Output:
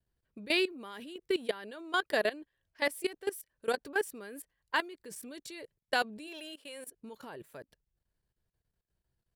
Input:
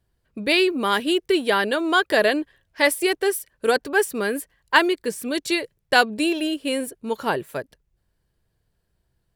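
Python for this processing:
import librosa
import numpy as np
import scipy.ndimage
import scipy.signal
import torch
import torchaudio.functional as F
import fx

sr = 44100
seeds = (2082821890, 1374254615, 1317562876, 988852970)

y = fx.highpass(x, sr, hz=570.0, slope=12, at=(6.26, 6.87), fade=0.02)
y = fx.level_steps(y, sr, step_db=18)
y = F.gain(torch.from_numpy(y), -9.0).numpy()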